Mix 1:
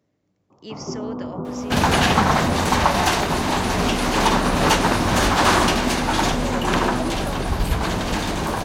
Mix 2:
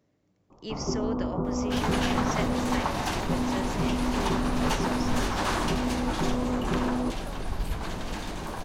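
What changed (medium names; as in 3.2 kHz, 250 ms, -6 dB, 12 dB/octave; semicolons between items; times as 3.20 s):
first sound: remove high-pass 84 Hz 24 dB/octave; second sound -12.0 dB; master: remove high-pass 46 Hz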